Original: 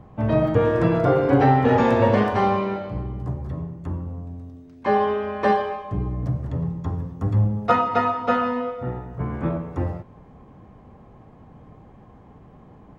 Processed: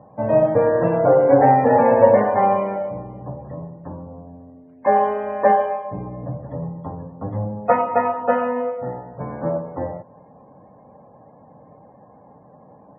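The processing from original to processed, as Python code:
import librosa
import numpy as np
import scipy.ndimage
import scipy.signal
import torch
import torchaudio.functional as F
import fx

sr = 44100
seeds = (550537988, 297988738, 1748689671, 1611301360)

y = fx.self_delay(x, sr, depth_ms=0.062)
y = fx.spec_topn(y, sr, count=64)
y = fx.cabinet(y, sr, low_hz=180.0, low_slope=12, high_hz=2200.0, hz=(220.0, 370.0, 560.0, 850.0, 1300.0), db=(-3, -9, 9, 4, -8))
y = y * librosa.db_to_amplitude(2.0)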